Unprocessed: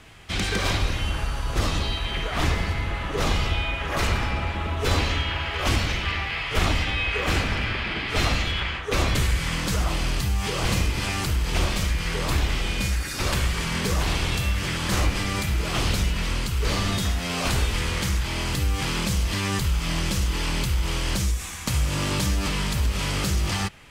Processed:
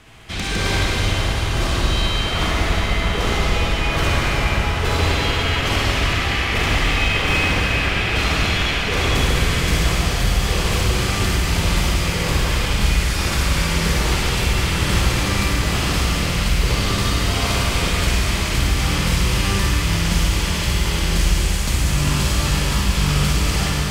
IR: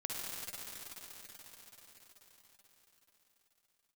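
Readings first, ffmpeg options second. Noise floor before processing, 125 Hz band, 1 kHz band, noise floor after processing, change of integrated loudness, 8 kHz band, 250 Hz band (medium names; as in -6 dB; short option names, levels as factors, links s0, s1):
-30 dBFS, +5.5 dB, +5.5 dB, -22 dBFS, +6.0 dB, +6.0 dB, +5.5 dB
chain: -filter_complex "[0:a]asoftclip=type=tanh:threshold=0.15[s0];[1:a]atrim=start_sample=2205[s1];[s0][s1]afir=irnorm=-1:irlink=0,volume=1.68"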